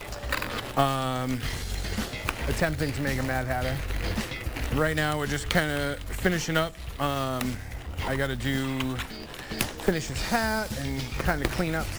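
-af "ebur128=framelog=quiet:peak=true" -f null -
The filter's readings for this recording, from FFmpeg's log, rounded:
Integrated loudness:
  I:         -28.7 LUFS
  Threshold: -38.7 LUFS
Loudness range:
  LRA:         2.2 LU
  Threshold: -48.8 LUFS
  LRA low:   -29.8 LUFS
  LRA high:  -27.6 LUFS
True peak:
  Peak:       -5.8 dBFS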